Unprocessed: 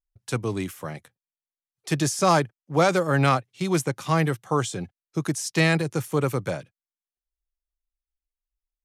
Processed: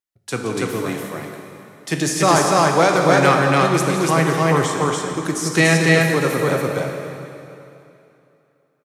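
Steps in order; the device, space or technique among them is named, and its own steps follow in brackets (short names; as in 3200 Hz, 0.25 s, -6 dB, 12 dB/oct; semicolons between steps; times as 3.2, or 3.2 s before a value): stadium PA (HPF 170 Hz 12 dB/oct; bell 1900 Hz +4 dB 0.23 oct; loudspeakers at several distances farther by 59 m -12 dB, 99 m -1 dB; reverb RT60 2.8 s, pre-delay 15 ms, DRR 3 dB); gain +3.5 dB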